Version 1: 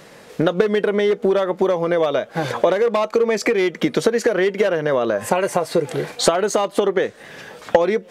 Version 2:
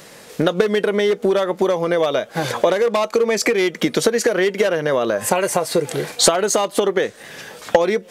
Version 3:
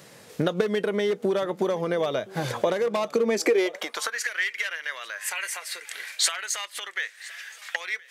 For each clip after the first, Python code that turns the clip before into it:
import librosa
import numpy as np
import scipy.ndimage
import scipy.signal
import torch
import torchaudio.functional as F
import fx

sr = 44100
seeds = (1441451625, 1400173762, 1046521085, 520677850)

y1 = fx.high_shelf(x, sr, hz=4100.0, db=10.0)
y2 = y1 + 10.0 ** (-22.0 / 20.0) * np.pad(y1, (int(1020 * sr / 1000.0), 0))[:len(y1)]
y2 = fx.filter_sweep_highpass(y2, sr, from_hz=100.0, to_hz=1900.0, start_s=2.9, end_s=4.27, q=2.4)
y2 = y2 * 10.0 ** (-8.0 / 20.0)